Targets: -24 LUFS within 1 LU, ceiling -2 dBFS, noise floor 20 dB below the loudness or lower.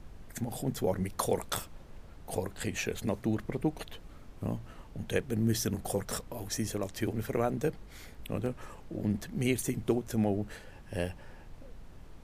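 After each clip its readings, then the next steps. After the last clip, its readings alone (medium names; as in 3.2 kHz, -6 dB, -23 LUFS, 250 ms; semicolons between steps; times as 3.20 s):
dropouts 1; longest dropout 1.8 ms; noise floor -51 dBFS; noise floor target -54 dBFS; loudness -34.0 LUFS; peak level -13.5 dBFS; loudness target -24.0 LUFS
-> interpolate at 8.46 s, 1.8 ms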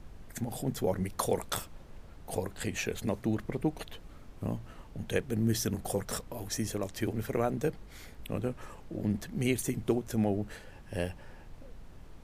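dropouts 0; noise floor -51 dBFS; noise floor target -54 dBFS
-> noise print and reduce 6 dB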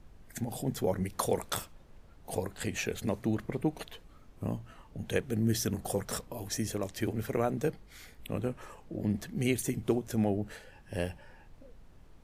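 noise floor -56 dBFS; loudness -34.0 LUFS; peak level -13.5 dBFS; loudness target -24.0 LUFS
-> trim +10 dB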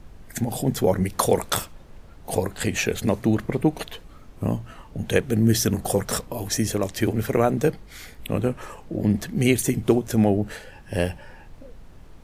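loudness -24.0 LUFS; peak level -3.5 dBFS; noise floor -46 dBFS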